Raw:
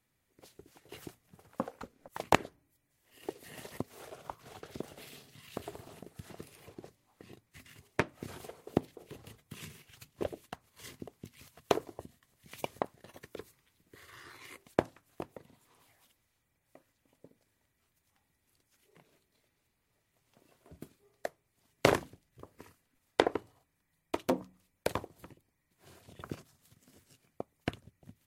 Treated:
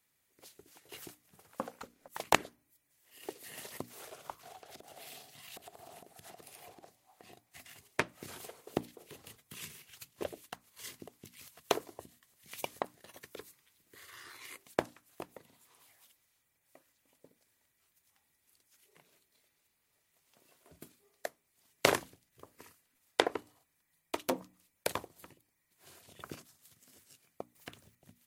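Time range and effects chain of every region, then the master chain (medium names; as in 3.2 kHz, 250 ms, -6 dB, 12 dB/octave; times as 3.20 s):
4.43–7.78 s: peaking EQ 730 Hz +13.5 dB 0.47 oct + compression, threshold -46 dBFS
27.55–27.95 s: companding laws mixed up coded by mu + compression 1.5:1, threshold -59 dBFS
whole clip: tilt EQ +2 dB/octave; hum notches 60/120/180/240/300 Hz; trim -1 dB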